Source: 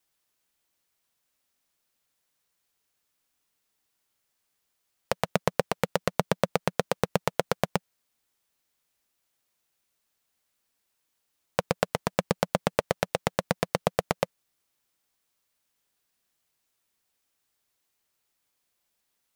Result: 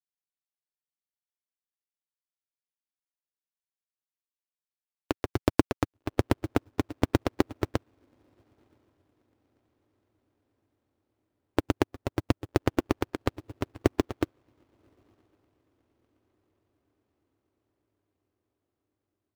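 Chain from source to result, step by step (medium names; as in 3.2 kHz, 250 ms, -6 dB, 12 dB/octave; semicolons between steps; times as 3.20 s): treble shelf 9.3 kHz -6.5 dB; echo that smears into a reverb 1113 ms, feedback 60%, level -14.5 dB; in parallel at +3 dB: peak limiter -16 dBFS, peak gain reduction 11.5 dB; on the sum: pitch shift -9.5 st; companded quantiser 6-bit; upward expansion 2.5:1, over -37 dBFS; trim -1.5 dB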